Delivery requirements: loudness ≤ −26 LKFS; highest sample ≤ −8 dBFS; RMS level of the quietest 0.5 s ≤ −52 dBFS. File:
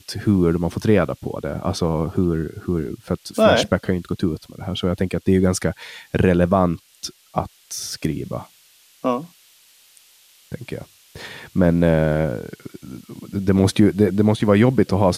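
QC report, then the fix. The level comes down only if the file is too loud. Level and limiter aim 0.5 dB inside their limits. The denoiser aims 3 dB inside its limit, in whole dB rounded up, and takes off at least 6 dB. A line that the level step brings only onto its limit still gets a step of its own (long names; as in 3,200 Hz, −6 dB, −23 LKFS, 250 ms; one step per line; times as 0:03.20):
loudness −20.5 LKFS: out of spec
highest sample −3.5 dBFS: out of spec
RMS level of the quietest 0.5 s −53 dBFS: in spec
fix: level −6 dB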